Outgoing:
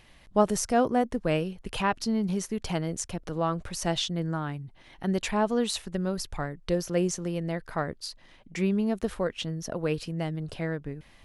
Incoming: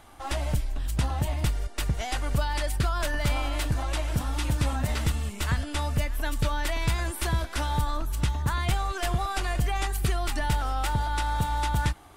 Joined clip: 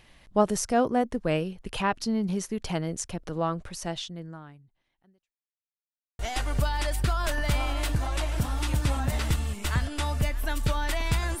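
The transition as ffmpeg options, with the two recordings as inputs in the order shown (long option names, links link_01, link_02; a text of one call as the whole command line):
ffmpeg -i cue0.wav -i cue1.wav -filter_complex "[0:a]apad=whole_dur=11.4,atrim=end=11.4,asplit=2[link_01][link_02];[link_01]atrim=end=5.34,asetpts=PTS-STARTPTS,afade=type=out:start_time=3.42:duration=1.92:curve=qua[link_03];[link_02]atrim=start=5.34:end=6.19,asetpts=PTS-STARTPTS,volume=0[link_04];[1:a]atrim=start=1.95:end=7.16,asetpts=PTS-STARTPTS,afade=type=in:duration=0.004:curve=hsin[link_05];[link_03][link_04][link_05]concat=n=3:v=0:a=1" out.wav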